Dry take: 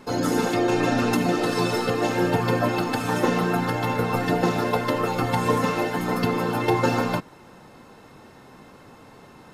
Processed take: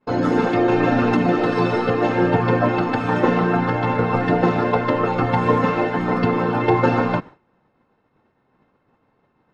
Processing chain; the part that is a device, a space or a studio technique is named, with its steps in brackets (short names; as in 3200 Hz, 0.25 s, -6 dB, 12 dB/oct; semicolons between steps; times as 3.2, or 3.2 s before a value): hearing-loss simulation (LPF 2500 Hz 12 dB/oct; expander -34 dBFS); gain +4.5 dB